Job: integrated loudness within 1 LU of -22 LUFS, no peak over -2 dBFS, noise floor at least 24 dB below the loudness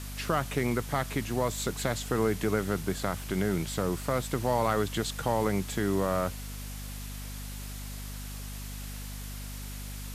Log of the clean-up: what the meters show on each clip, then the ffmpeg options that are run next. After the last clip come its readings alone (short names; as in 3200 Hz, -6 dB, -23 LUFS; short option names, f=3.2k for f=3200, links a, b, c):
hum 50 Hz; harmonics up to 250 Hz; hum level -37 dBFS; noise floor -39 dBFS; noise floor target -56 dBFS; loudness -31.5 LUFS; peak -13.0 dBFS; loudness target -22.0 LUFS
-> -af "bandreject=f=50:t=h:w=4,bandreject=f=100:t=h:w=4,bandreject=f=150:t=h:w=4,bandreject=f=200:t=h:w=4,bandreject=f=250:t=h:w=4"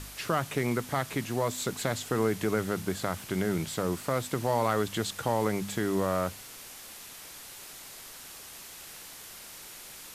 hum none; noise floor -46 dBFS; noise floor target -55 dBFS
-> -af "afftdn=nr=9:nf=-46"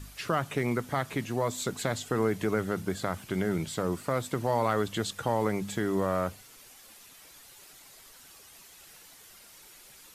noise floor -53 dBFS; noise floor target -55 dBFS
-> -af "afftdn=nr=6:nf=-53"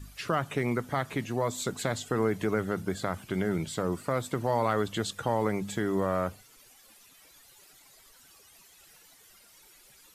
noise floor -58 dBFS; loudness -30.5 LUFS; peak -13.5 dBFS; loudness target -22.0 LUFS
-> -af "volume=8.5dB"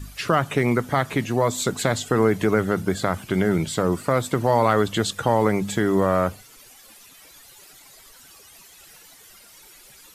loudness -22.0 LUFS; peak -5.0 dBFS; noise floor -49 dBFS